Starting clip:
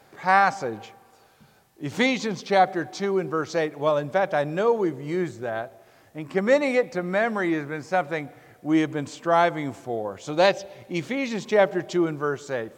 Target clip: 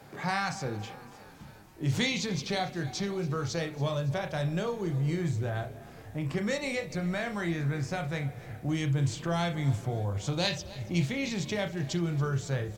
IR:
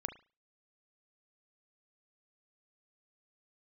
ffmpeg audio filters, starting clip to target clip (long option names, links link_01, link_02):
-filter_complex "[0:a]acrossover=split=140|3000[link_01][link_02][link_03];[link_02]acompressor=threshold=-39dB:ratio=3[link_04];[link_01][link_04][link_03]amix=inputs=3:normalize=0,equalizer=frequency=140:width=0.8:gain=8.5,asplit=7[link_05][link_06][link_07][link_08][link_09][link_10][link_11];[link_06]adelay=280,afreqshift=32,volume=-19dB[link_12];[link_07]adelay=560,afreqshift=64,volume=-23dB[link_13];[link_08]adelay=840,afreqshift=96,volume=-27dB[link_14];[link_09]adelay=1120,afreqshift=128,volume=-31dB[link_15];[link_10]adelay=1400,afreqshift=160,volume=-35.1dB[link_16];[link_11]adelay=1680,afreqshift=192,volume=-39.1dB[link_17];[link_05][link_12][link_13][link_14][link_15][link_16][link_17]amix=inputs=7:normalize=0,asubboost=boost=8.5:cutoff=74[link_18];[1:a]atrim=start_sample=2205,atrim=end_sample=3969,asetrate=52920,aresample=44100[link_19];[link_18][link_19]afir=irnorm=-1:irlink=0,volume=4.5dB"